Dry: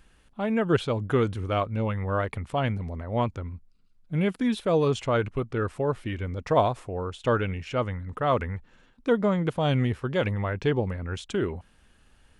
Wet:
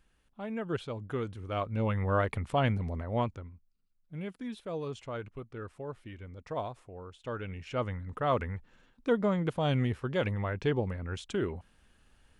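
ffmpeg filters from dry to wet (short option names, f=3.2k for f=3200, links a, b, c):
-af "volume=8.5dB,afade=t=in:st=1.43:d=0.54:silence=0.316228,afade=t=out:st=2.96:d=0.58:silence=0.223872,afade=t=in:st=7.33:d=0.54:silence=0.334965"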